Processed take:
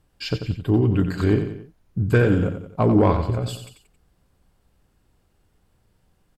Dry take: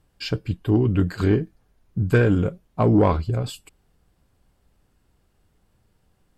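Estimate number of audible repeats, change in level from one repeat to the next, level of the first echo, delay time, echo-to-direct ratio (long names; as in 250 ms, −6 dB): 3, −6.5 dB, −8.5 dB, 90 ms, −7.5 dB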